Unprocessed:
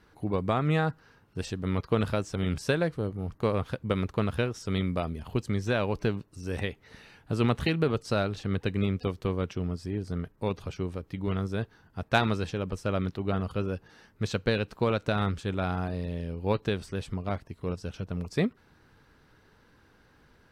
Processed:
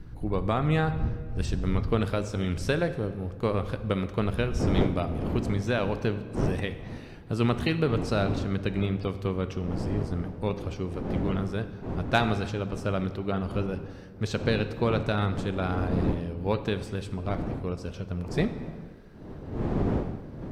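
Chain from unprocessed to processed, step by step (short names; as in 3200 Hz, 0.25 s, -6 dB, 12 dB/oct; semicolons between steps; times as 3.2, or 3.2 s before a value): wind noise 89 Hz -34 dBFS, from 4.59 s 290 Hz; reverb RT60 1.8 s, pre-delay 10 ms, DRR 10.5 dB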